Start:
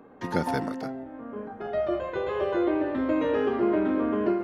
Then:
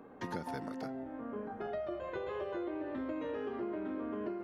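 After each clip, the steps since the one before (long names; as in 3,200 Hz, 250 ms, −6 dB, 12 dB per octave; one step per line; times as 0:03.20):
downward compressor 6 to 1, threshold −34 dBFS, peak gain reduction 13.5 dB
level −2.5 dB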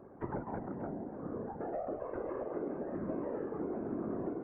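Gaussian smoothing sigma 5.8 samples
random phases in short frames
level +1 dB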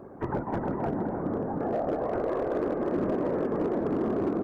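bouncing-ball delay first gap 310 ms, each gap 0.65×, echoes 5
gain into a clipping stage and back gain 30.5 dB
level +8.5 dB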